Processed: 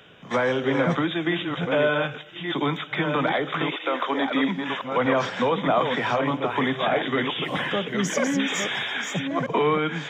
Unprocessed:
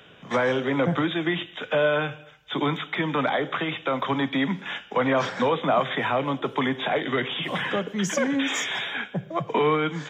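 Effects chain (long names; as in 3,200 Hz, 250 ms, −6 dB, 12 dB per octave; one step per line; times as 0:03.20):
delay that plays each chunk backwards 631 ms, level −5 dB
0:03.70–0:04.83: high-pass filter 350 Hz → 140 Hz 24 dB per octave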